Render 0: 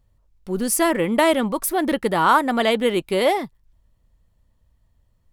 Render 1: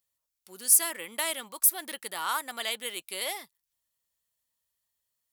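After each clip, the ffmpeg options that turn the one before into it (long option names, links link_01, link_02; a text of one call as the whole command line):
ffmpeg -i in.wav -af "aderivative,volume=1dB" out.wav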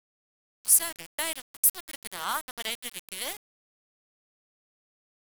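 ffmpeg -i in.wav -af "aeval=exprs='val(0)*gte(abs(val(0)),0.0282)':channel_layout=same" out.wav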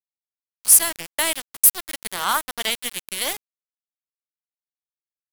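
ffmpeg -i in.wav -af "asoftclip=type=hard:threshold=-14.5dB,volume=9dB" out.wav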